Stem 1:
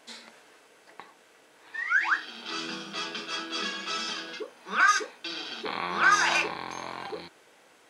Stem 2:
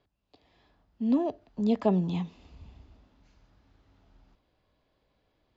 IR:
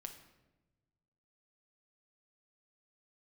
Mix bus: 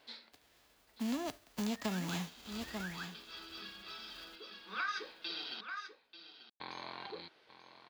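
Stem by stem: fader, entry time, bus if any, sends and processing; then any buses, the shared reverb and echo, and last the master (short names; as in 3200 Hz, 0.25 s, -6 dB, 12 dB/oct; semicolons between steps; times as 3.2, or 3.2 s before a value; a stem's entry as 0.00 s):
-9.5 dB, 0.00 s, muted 5.61–6.6, no send, echo send -13.5 dB, resonant high shelf 5700 Hz -10 dB, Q 3; auto duck -10 dB, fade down 0.20 s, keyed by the second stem
-3.5 dB, 0.00 s, no send, echo send -14.5 dB, spectral whitening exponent 0.3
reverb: off
echo: echo 0.888 s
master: compressor 5:1, threshold -34 dBFS, peak gain reduction 10.5 dB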